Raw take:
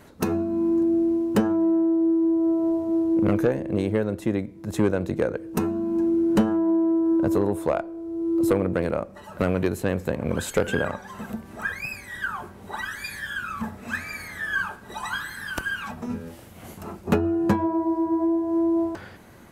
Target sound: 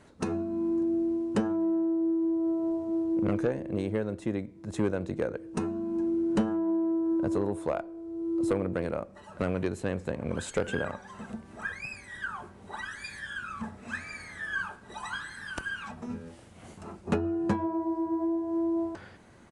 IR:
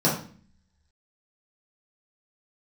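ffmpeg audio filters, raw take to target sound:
-af "aresample=22050,aresample=44100,volume=0.473"

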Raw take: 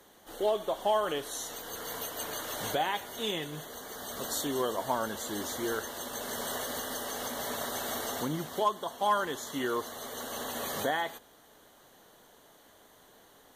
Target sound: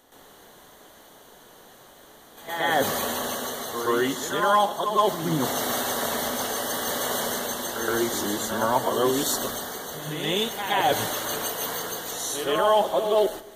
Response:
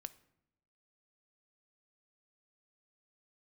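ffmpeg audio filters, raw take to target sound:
-filter_complex "[0:a]areverse,asplit=2[s0][s1];[1:a]atrim=start_sample=2205,asetrate=36162,aresample=44100,adelay=120[s2];[s1][s2]afir=irnorm=-1:irlink=0,volume=3.76[s3];[s0][s3]amix=inputs=2:normalize=0"

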